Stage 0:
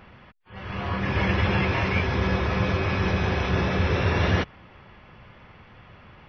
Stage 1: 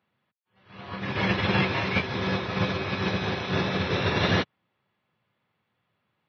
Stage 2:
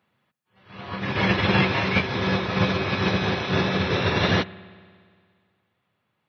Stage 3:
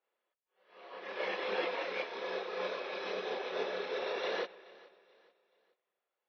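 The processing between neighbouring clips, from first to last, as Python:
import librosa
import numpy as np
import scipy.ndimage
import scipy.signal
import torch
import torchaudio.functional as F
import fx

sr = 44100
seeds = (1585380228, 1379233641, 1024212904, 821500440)

y1 = scipy.signal.sosfilt(scipy.signal.butter(4, 110.0, 'highpass', fs=sr, output='sos'), x)
y1 = fx.peak_eq(y1, sr, hz=3900.0, db=9.5, octaves=0.39)
y1 = fx.upward_expand(y1, sr, threshold_db=-41.0, expansion=2.5)
y1 = F.gain(torch.from_numpy(y1), 2.5).numpy()
y2 = fx.rider(y1, sr, range_db=10, speed_s=2.0)
y2 = fx.rev_spring(y2, sr, rt60_s=2.0, pass_ms=(58,), chirp_ms=55, drr_db=19.0)
y2 = F.gain(torch.from_numpy(y2), 3.5).numpy()
y3 = fx.ladder_highpass(y2, sr, hz=410.0, resonance_pct=55)
y3 = fx.chorus_voices(y3, sr, voices=6, hz=1.2, base_ms=30, depth_ms=3.0, mix_pct=55)
y3 = fx.echo_feedback(y3, sr, ms=429, feedback_pct=37, wet_db=-22.0)
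y3 = F.gain(torch.from_numpy(y3), -2.5).numpy()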